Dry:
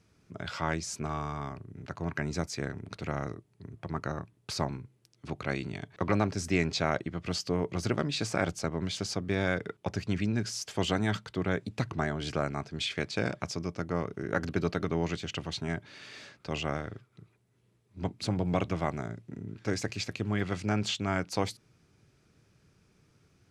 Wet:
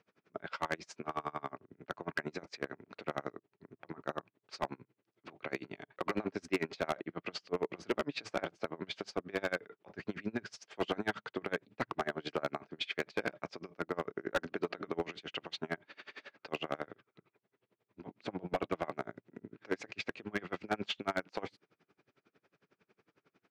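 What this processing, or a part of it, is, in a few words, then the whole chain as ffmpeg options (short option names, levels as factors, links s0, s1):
helicopter radio: -af "highpass=330,lowpass=2700,aeval=exprs='val(0)*pow(10,-30*(0.5-0.5*cos(2*PI*11*n/s))/20)':c=same,asoftclip=type=hard:threshold=0.0316,volume=1.88"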